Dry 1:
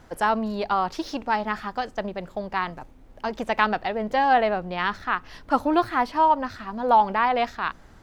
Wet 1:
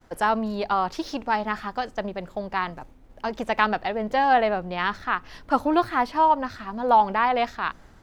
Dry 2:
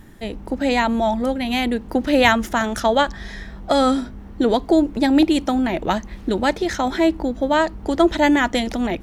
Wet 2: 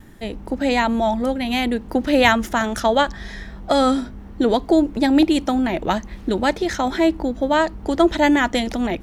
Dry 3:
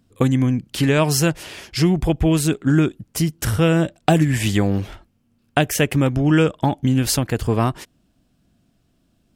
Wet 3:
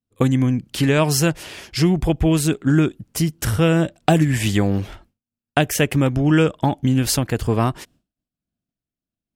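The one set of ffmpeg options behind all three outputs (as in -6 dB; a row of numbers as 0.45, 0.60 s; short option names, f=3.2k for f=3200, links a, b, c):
-af "agate=range=-33dB:threshold=-46dB:ratio=3:detection=peak"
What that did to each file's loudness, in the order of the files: 0.0, 0.0, 0.0 LU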